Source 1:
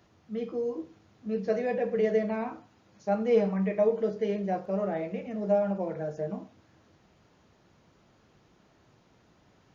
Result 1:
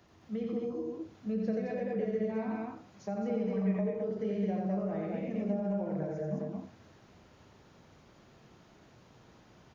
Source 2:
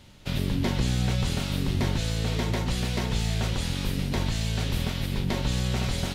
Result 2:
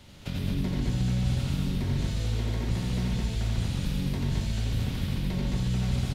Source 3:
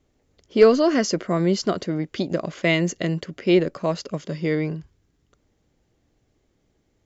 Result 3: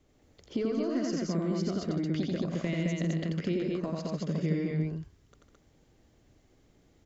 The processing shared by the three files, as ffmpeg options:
ffmpeg -i in.wav -filter_complex "[0:a]acompressor=threshold=-28dB:ratio=4,asplit=2[link_01][link_02];[link_02]aecho=0:1:87.46|151.6|215.7:0.794|0.316|0.794[link_03];[link_01][link_03]amix=inputs=2:normalize=0,acrossover=split=310[link_04][link_05];[link_05]acompressor=threshold=-44dB:ratio=2[link_06];[link_04][link_06]amix=inputs=2:normalize=0" out.wav

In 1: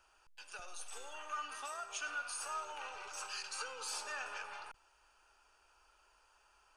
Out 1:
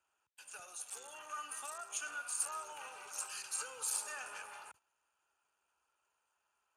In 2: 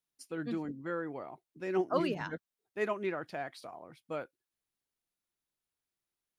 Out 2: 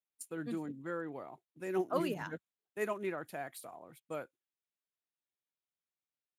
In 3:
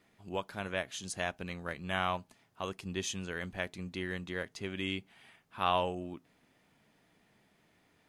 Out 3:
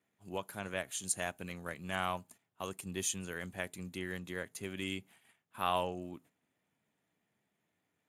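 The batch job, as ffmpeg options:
ffmpeg -i in.wav -af "agate=range=-10dB:threshold=-57dB:ratio=16:detection=peak,aexciter=amount=12.9:drive=2.7:freq=7500,volume=-3dB" -ar 32000 -c:a libspeex -b:a 36k out.spx

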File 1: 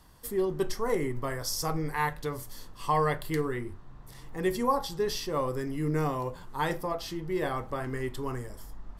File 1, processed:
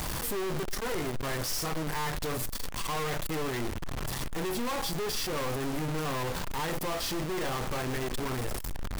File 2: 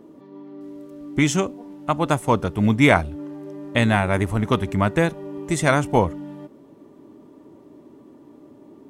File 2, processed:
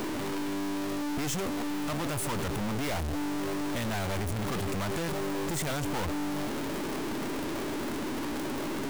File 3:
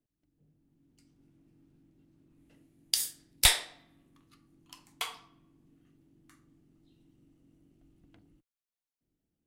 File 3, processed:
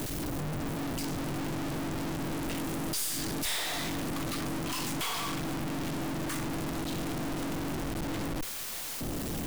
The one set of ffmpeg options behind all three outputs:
ffmpeg -i in.wav -af "aeval=exprs='val(0)+0.5*0.0631*sgn(val(0))':channel_layout=same,acrusher=bits=3:mode=log:mix=0:aa=0.000001,aeval=exprs='(tanh(35.5*val(0)+0.5)-tanh(0.5))/35.5':channel_layout=same" out.wav

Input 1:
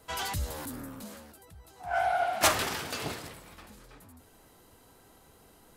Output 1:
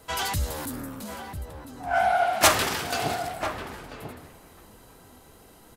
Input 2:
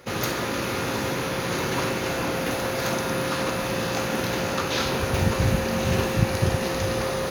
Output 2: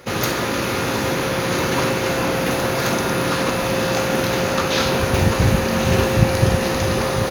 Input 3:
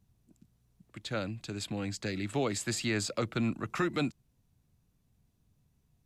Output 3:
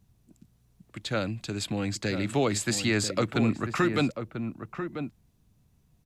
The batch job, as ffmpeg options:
ffmpeg -i in.wav -filter_complex "[0:a]asplit=2[link_01][link_02];[link_02]adelay=991.3,volume=-8dB,highshelf=frequency=4000:gain=-22.3[link_03];[link_01][link_03]amix=inputs=2:normalize=0,volume=5.5dB" out.wav

